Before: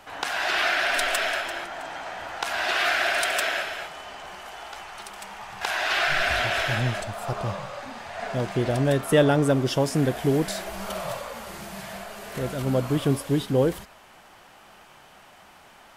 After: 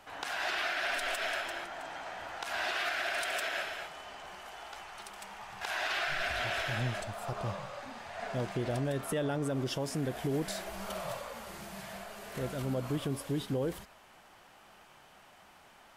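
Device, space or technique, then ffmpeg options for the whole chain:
stacked limiters: -af "alimiter=limit=-14dB:level=0:latency=1:release=124,alimiter=limit=-17dB:level=0:latency=1:release=75,volume=-7dB"

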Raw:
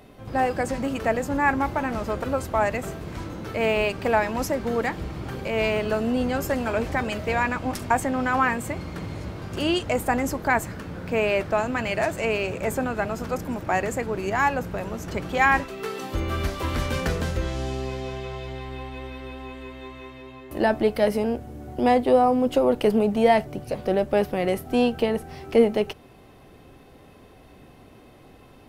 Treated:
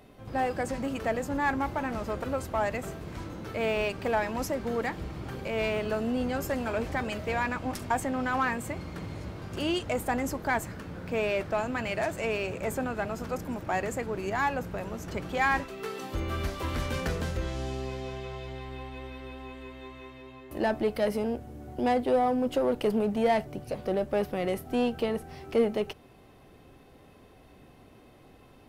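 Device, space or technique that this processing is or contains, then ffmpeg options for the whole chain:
parallel distortion: -filter_complex "[0:a]asplit=2[a][b];[b]asoftclip=type=hard:threshold=-20.5dB,volume=-4.5dB[c];[a][c]amix=inputs=2:normalize=0,volume=-9dB"

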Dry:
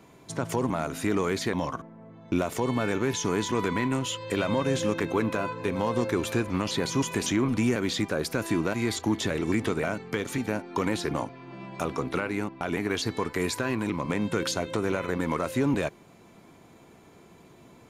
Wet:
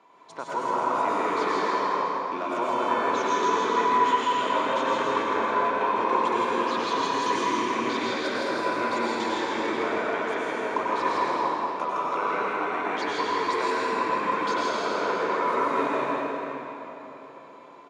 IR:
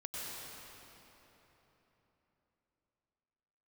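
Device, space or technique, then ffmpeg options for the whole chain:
station announcement: -filter_complex "[0:a]highpass=420,lowpass=4.5k,equalizer=f=1k:t=o:w=0.55:g=10.5,aecho=1:1:163.3|209.9:0.631|0.251[a];[1:a]atrim=start_sample=2205[b];[a][b]afir=irnorm=-1:irlink=0"

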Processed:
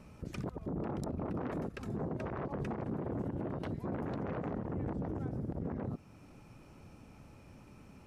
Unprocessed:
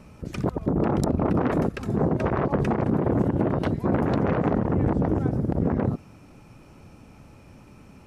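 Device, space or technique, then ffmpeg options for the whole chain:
stacked limiters: -af "alimiter=limit=-17dB:level=0:latency=1:release=21,alimiter=limit=-23dB:level=0:latency=1:release=338,volume=-6.5dB"

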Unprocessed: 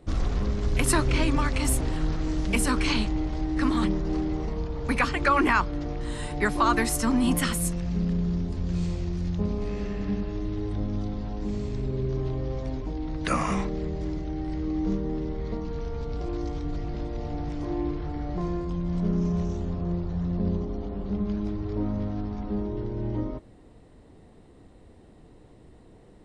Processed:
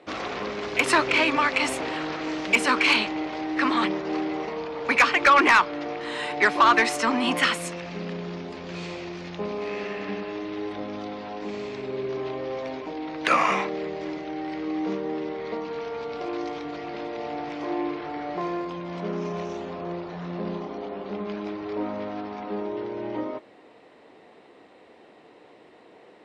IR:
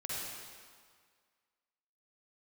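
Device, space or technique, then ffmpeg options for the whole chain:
intercom: -filter_complex "[0:a]asettb=1/sr,asplit=3[a][b][c];[a]atrim=end=20.074[d];[b]atrim=start=20.07:end=20.78,asetpts=PTS-STARTPTS,afade=t=in:d=0.004:c=qsin,afade=t=out:st=0.706:d=0.004:c=qsin,asplit=2[e][f];[f]adelay=28,volume=-6.5dB[g];[e][g]amix=inputs=2:normalize=0,atrim=end_sample=31311[h];[c]atrim=start=20.776[i];[d][h]acrossfade=d=0.004:c1=hsin:c2=qsin[j];[j][i]acrossfade=d=0.004:c1=qsin:c2=hsin,highpass=480,lowpass=4.2k,equalizer=f=2.4k:t=o:w=0.53:g=5,asoftclip=type=tanh:threshold=-18.5dB,volume=8.5dB"

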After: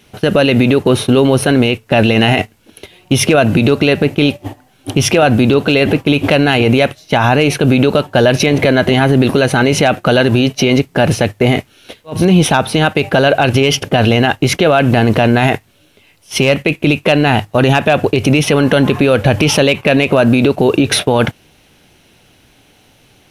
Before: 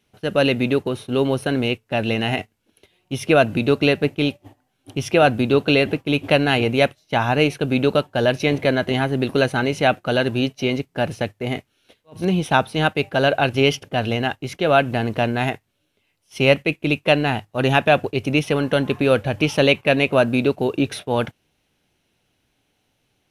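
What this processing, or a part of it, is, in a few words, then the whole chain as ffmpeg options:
loud club master: -af "acompressor=threshold=-21dB:ratio=2,asoftclip=type=hard:threshold=-11dB,alimiter=level_in=20.5dB:limit=-1dB:release=50:level=0:latency=1,volume=-1dB"

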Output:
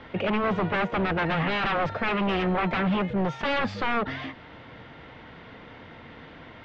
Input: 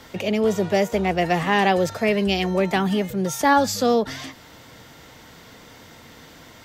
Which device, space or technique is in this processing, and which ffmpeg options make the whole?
synthesiser wavefolder: -af "aeval=exprs='0.0944*(abs(mod(val(0)/0.0944+3,4)-2)-1)':c=same,lowpass=f=3k:w=0.5412,lowpass=f=3k:w=1.3066,volume=1dB"

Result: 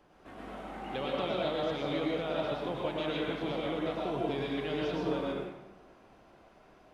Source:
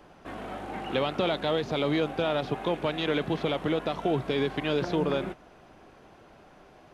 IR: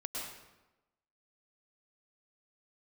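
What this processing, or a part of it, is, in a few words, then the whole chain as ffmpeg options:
bathroom: -filter_complex "[1:a]atrim=start_sample=2205[a];[0:a][a]afir=irnorm=-1:irlink=0,volume=-6.5dB"

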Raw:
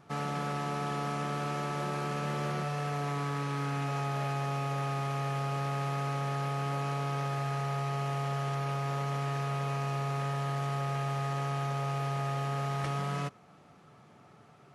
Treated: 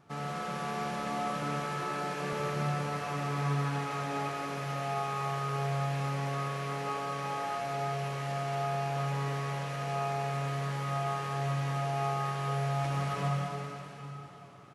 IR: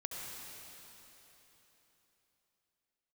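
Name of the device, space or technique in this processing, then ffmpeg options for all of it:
cave: -filter_complex "[0:a]asettb=1/sr,asplit=3[a][b][c];[a]atrim=end=1.424[d];[b]atrim=start=1.42:end=2.33,asetpts=PTS-STARTPTS,afade=t=in:d=0.004:c=qsin,afade=t=out:st=0.906:d=0.004:c=qsin,highpass=f=150:w=0.5412,highpass=f=150:w=1.3066[e];[c]atrim=start=2.326[f];[d][e]acrossfade=d=0.004:c1=hsin:c2=qsin[g];[g][f]acrossfade=d=0.004:c1=qsin:c2=hsin,aecho=1:1:196:0.376[h];[1:a]atrim=start_sample=2205[i];[h][i]afir=irnorm=-1:irlink=0"

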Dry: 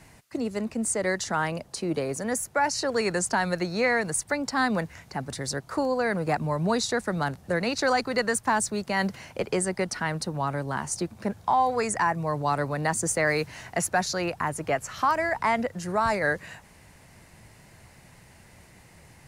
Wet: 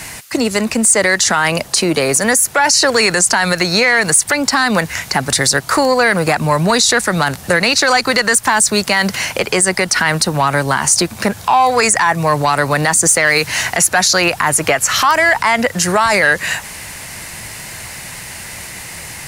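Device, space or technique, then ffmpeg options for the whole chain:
mastering chain: -af "equalizer=f=4.5k:t=o:w=2.2:g=-2.5,acompressor=threshold=-30dB:ratio=2,asoftclip=type=tanh:threshold=-19dB,tiltshelf=f=1.2k:g=-8,asoftclip=type=hard:threshold=-17dB,alimiter=level_in=25dB:limit=-1dB:release=50:level=0:latency=1,volume=-2dB"

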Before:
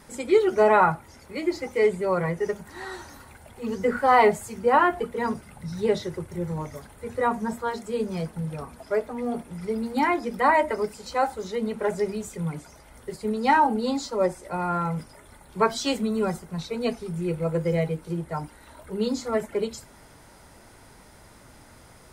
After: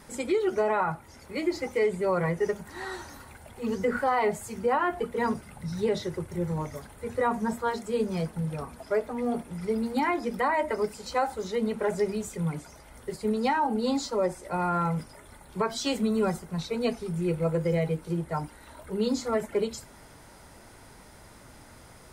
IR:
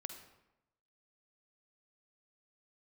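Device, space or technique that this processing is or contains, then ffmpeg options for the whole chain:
stacked limiters: -af "alimiter=limit=-12.5dB:level=0:latency=1:release=402,alimiter=limit=-17dB:level=0:latency=1:release=78"

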